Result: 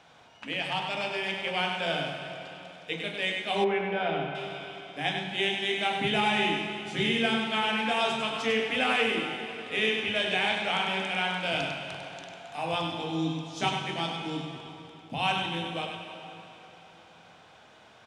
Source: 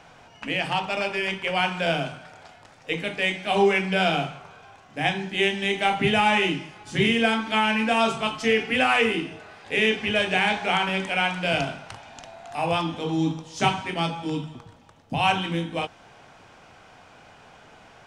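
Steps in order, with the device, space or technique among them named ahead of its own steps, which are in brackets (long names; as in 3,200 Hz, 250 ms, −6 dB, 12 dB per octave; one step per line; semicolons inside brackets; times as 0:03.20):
PA in a hall (high-pass filter 110 Hz 6 dB per octave; parametric band 3,600 Hz +7.5 dB 0.34 octaves; single-tap delay 99 ms −5.5 dB; convolution reverb RT60 3.7 s, pre-delay 120 ms, DRR 7 dB)
0:03.64–0:04.35: low-pass filter 1,900 Hz 12 dB per octave
level −7 dB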